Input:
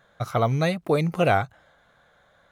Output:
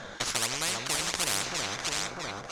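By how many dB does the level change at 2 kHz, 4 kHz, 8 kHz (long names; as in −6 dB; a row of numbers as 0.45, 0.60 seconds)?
−1.0, +9.5, +19.5 decibels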